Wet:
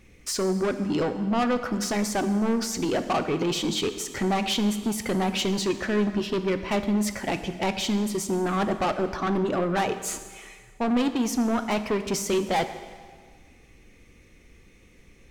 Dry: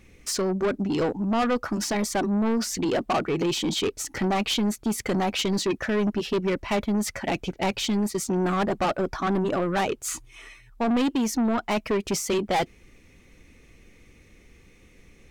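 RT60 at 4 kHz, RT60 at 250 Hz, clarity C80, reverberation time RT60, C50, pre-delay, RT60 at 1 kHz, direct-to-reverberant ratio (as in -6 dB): 1.6 s, 1.7 s, 11.5 dB, 1.7 s, 10.5 dB, 5 ms, 1.7 s, 9.0 dB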